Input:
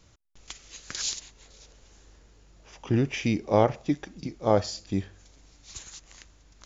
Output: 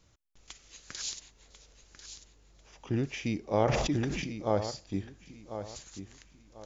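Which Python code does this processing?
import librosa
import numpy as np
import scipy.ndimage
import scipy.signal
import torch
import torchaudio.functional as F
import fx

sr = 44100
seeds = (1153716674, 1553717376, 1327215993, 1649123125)

y = fx.echo_feedback(x, sr, ms=1044, feedback_pct=29, wet_db=-10.5)
y = fx.sustainer(y, sr, db_per_s=27.0, at=(3.58, 4.42))
y = y * librosa.db_to_amplitude(-6.5)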